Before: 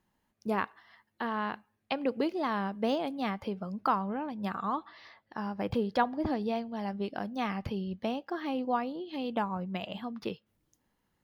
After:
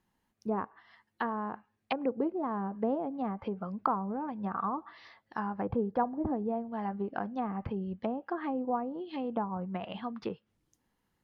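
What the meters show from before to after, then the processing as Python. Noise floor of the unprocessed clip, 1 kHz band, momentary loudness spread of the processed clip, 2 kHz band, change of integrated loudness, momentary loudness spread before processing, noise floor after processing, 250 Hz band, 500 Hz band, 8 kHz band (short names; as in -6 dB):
-78 dBFS, -1.0 dB, 8 LU, -6.0 dB, -1.0 dB, 9 LU, -79 dBFS, -0.5 dB, -1.0 dB, n/a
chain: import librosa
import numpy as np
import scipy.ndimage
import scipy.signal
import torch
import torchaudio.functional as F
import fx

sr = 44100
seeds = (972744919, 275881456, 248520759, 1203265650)

y = fx.notch(x, sr, hz=600.0, q=12.0)
y = fx.env_lowpass_down(y, sr, base_hz=670.0, full_db=-29.0)
y = fx.dynamic_eq(y, sr, hz=1200.0, q=0.79, threshold_db=-49.0, ratio=4.0, max_db=6)
y = F.gain(torch.from_numpy(y), -1.0).numpy()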